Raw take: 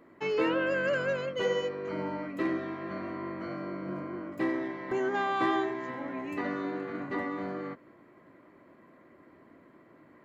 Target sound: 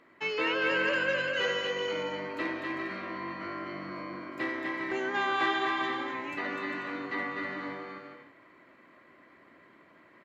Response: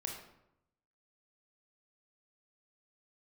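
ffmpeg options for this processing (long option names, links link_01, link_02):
-filter_complex "[0:a]equalizer=frequency=3000:width=0.36:gain=14,asplit=2[link_01][link_02];[link_02]aecho=0:1:250|400|490|544|576.4:0.631|0.398|0.251|0.158|0.1[link_03];[link_01][link_03]amix=inputs=2:normalize=0,volume=-8dB"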